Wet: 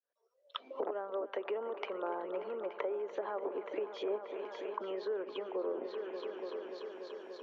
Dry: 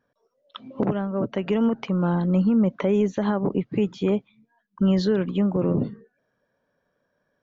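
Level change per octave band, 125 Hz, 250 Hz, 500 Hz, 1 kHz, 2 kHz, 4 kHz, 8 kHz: below −40 dB, −25.0 dB, −9.5 dB, −7.5 dB, −9.5 dB, −9.0 dB, can't be measured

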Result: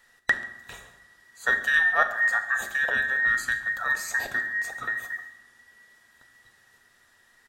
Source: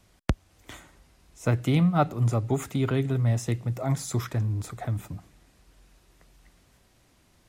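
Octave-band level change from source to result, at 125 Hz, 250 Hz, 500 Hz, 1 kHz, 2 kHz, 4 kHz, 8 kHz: below −25 dB, −21.5 dB, −7.5 dB, +2.0 dB, +21.0 dB, +3.0 dB, +0.5 dB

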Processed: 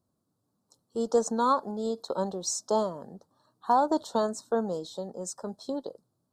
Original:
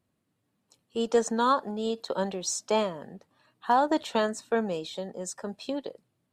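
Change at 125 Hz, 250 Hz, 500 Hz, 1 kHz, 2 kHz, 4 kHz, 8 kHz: −1.0, −1.0, −0.5, −0.5, −9.5, −4.5, 0.0 decibels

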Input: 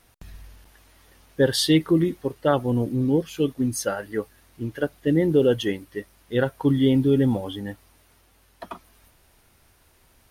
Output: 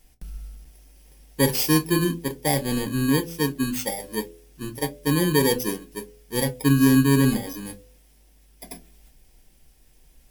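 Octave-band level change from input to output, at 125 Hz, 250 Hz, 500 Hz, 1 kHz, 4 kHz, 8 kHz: +1.0, 0.0, −4.0, +2.5, +0.5, +6.5 decibels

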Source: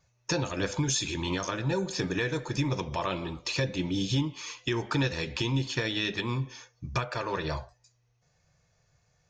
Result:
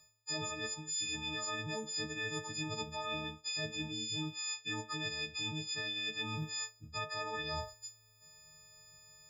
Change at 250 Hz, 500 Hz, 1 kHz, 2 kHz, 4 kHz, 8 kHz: −13.0, −11.5, −7.5, −5.5, −3.0, −3.0 decibels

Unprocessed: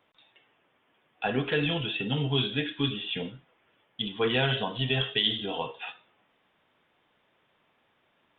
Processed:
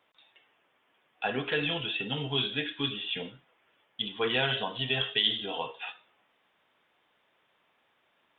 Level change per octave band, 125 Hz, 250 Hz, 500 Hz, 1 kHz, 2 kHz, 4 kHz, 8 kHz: −7.5 dB, −5.5 dB, −3.0 dB, −1.0 dB, 0.0 dB, 0.0 dB, can't be measured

